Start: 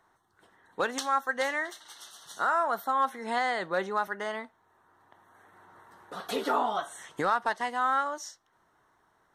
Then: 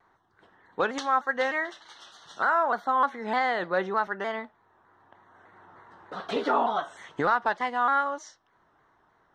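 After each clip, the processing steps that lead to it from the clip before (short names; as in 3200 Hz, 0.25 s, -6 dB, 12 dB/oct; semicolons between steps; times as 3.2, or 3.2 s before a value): air absorption 150 m; shaped vibrato saw down 3.3 Hz, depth 100 cents; gain +3.5 dB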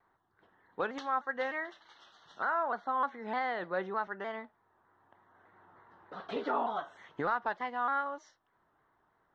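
air absorption 140 m; gain -7 dB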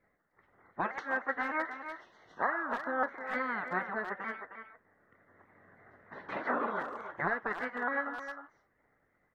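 resonant high shelf 2400 Hz -9.5 dB, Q 3; spectral gate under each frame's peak -10 dB weak; speakerphone echo 0.31 s, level -8 dB; gain +6.5 dB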